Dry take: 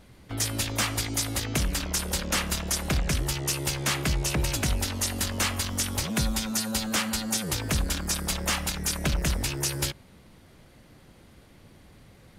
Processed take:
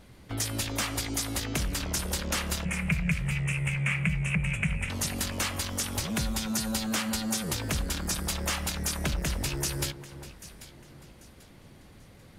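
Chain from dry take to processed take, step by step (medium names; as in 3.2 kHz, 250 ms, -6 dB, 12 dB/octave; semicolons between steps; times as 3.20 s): 2.65–4.90 s: FFT filter 110 Hz 0 dB, 170 Hz +14 dB, 290 Hz -18 dB, 460 Hz -5 dB, 810 Hz -8 dB, 1.7 kHz +2 dB, 2.4 kHz +14 dB, 4.4 kHz -29 dB, 8.5 kHz -3 dB, 14 kHz -27 dB; compression 2:1, threshold -29 dBFS, peak gain reduction 8.5 dB; echo whose repeats swap between lows and highs 395 ms, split 1.4 kHz, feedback 56%, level -11 dB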